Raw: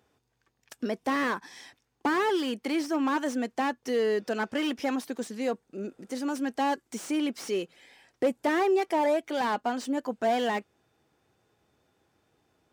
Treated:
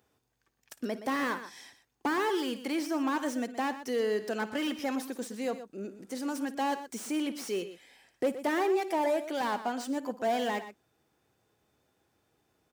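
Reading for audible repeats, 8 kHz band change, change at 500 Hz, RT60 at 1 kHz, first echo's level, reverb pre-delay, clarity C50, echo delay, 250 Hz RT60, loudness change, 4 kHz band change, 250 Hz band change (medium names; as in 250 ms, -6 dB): 2, 0.0 dB, -3.0 dB, no reverb, -17.0 dB, no reverb, no reverb, 56 ms, no reverb, -3.0 dB, -2.5 dB, -3.0 dB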